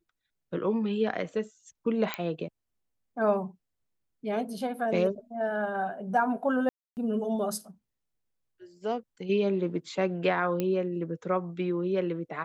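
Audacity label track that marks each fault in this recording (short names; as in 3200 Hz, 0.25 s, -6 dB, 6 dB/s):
2.140000	2.140000	pop -14 dBFS
6.690000	6.970000	gap 0.279 s
10.600000	10.600000	pop -16 dBFS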